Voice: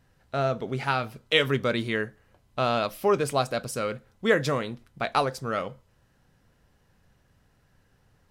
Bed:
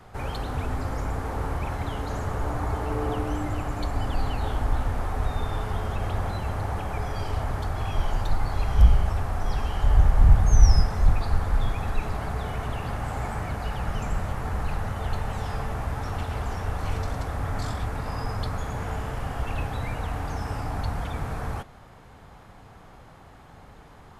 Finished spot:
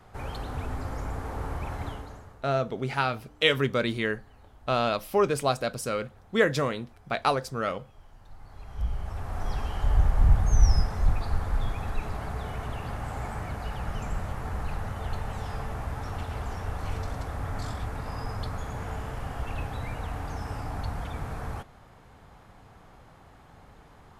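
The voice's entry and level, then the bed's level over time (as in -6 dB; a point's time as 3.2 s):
2.10 s, -0.5 dB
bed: 1.88 s -4.5 dB
2.49 s -27.5 dB
8.15 s -27.5 dB
9.41 s -4 dB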